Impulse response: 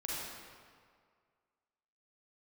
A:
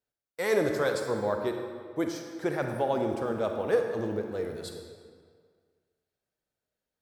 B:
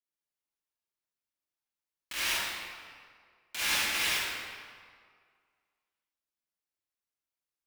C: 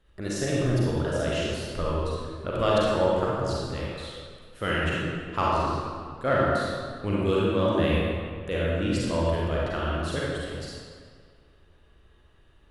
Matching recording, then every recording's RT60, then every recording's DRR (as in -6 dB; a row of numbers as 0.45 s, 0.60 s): C; 2.0 s, 2.0 s, 2.0 s; 3.5 dB, -11.5 dB, -6.0 dB